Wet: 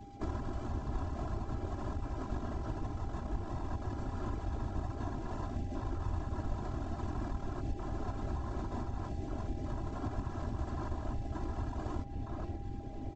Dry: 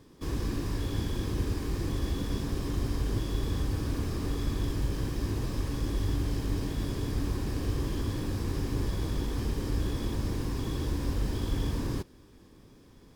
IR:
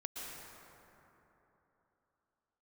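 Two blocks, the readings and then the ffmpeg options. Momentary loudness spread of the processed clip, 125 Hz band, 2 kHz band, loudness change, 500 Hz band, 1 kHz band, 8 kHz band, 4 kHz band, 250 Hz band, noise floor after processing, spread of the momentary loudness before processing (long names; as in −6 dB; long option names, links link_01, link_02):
2 LU, −7.0 dB, −8.0 dB, −7.0 dB, −6.0 dB, +1.5 dB, −15.5 dB, −16.5 dB, −7.5 dB, −43 dBFS, 1 LU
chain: -filter_complex "[0:a]equalizer=frequency=120:width_type=o:width=1.5:gain=9.5,aresample=16000,acrusher=samples=18:mix=1:aa=0.000001,aresample=44100,bandreject=frequency=60:width_type=h:width=6,bandreject=frequency=120:width_type=h:width=6,bandreject=frequency=180:width_type=h:width=6,bandreject=frequency=240:width_type=h:width=6,bandreject=frequency=300:width_type=h:width=6,bandreject=frequency=360:width_type=h:width=6,bandreject=frequency=420:width_type=h:width=6,bandreject=frequency=480:width_type=h:width=6,bandreject=frequency=540:width_type=h:width=6,bandreject=frequency=600:width_type=h:width=6,flanger=delay=17.5:depth=5.9:speed=1.4,asplit=2[link_01][link_02];[link_02]adelay=537,lowpass=frequency=3800:poles=1,volume=-12dB,asplit=2[link_03][link_04];[link_04]adelay=537,lowpass=frequency=3800:poles=1,volume=0.45,asplit=2[link_05][link_06];[link_06]adelay=537,lowpass=frequency=3800:poles=1,volume=0.45,asplit=2[link_07][link_08];[link_08]adelay=537,lowpass=frequency=3800:poles=1,volume=0.45,asplit=2[link_09][link_10];[link_10]adelay=537,lowpass=frequency=3800:poles=1,volume=0.45[link_11];[link_03][link_05][link_07][link_09][link_11]amix=inputs=5:normalize=0[link_12];[link_01][link_12]amix=inputs=2:normalize=0,acompressor=threshold=-41dB:ratio=8,afwtdn=0.00355,afftfilt=real='hypot(re,im)*cos(2*PI*random(0))':imag='hypot(re,im)*sin(2*PI*random(1))':win_size=512:overlap=0.75,crystalizer=i=7:c=0,aecho=1:1:3:0.68,aeval=exprs='val(0)+0.000631*sin(2*PI*800*n/s)':channel_layout=same,aemphasis=mode=reproduction:type=75kf,volume=11.5dB"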